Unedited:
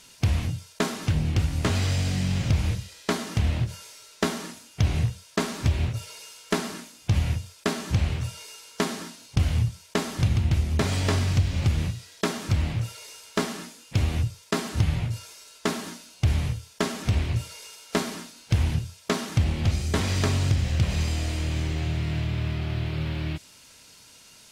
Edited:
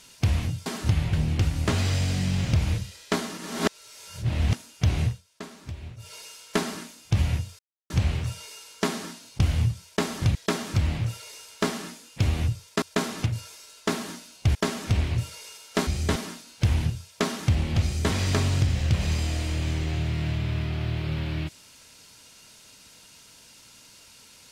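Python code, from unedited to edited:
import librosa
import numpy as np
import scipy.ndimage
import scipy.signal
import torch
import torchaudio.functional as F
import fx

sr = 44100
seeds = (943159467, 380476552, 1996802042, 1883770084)

y = fx.edit(x, sr, fx.swap(start_s=0.66, length_s=0.44, other_s=14.57, other_length_s=0.47),
    fx.reverse_span(start_s=3.35, length_s=1.17),
    fx.fade_down_up(start_s=5.02, length_s=1.1, db=-14.0, fade_s=0.17),
    fx.silence(start_s=7.56, length_s=0.31),
    fx.cut(start_s=10.32, length_s=1.78),
    fx.cut(start_s=16.33, length_s=0.4),
    fx.duplicate(start_s=19.72, length_s=0.29, to_s=18.05), tone=tone)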